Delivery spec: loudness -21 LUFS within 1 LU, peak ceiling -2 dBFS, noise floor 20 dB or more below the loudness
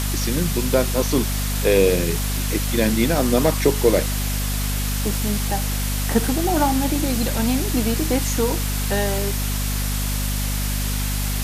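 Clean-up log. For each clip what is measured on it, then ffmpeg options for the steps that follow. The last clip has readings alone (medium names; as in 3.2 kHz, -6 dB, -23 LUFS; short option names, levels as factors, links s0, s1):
hum 50 Hz; highest harmonic 250 Hz; hum level -21 dBFS; noise floor -23 dBFS; noise floor target -41 dBFS; loudness -21.0 LUFS; peak level -3.5 dBFS; loudness target -21.0 LUFS
-> -af "bandreject=f=50:t=h:w=4,bandreject=f=100:t=h:w=4,bandreject=f=150:t=h:w=4,bandreject=f=200:t=h:w=4,bandreject=f=250:t=h:w=4"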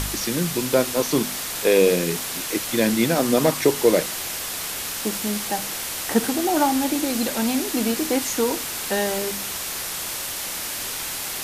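hum not found; noise floor -30 dBFS; noise floor target -43 dBFS
-> -af "afftdn=nr=13:nf=-30"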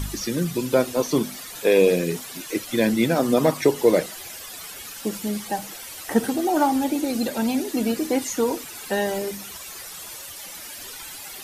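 noise floor -38 dBFS; noise floor target -43 dBFS
-> -af "afftdn=nr=6:nf=-38"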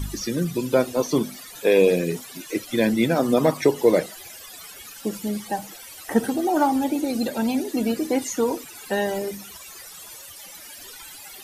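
noise floor -42 dBFS; noise floor target -43 dBFS
-> -af "afftdn=nr=6:nf=-42"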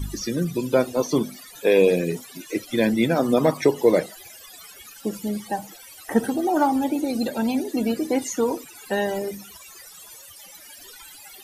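noise floor -45 dBFS; loudness -23.5 LUFS; peak level -5.0 dBFS; loudness target -21.0 LUFS
-> -af "volume=1.33"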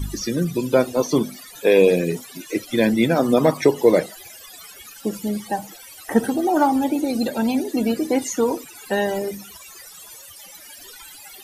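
loudness -21.0 LUFS; peak level -2.5 dBFS; noise floor -43 dBFS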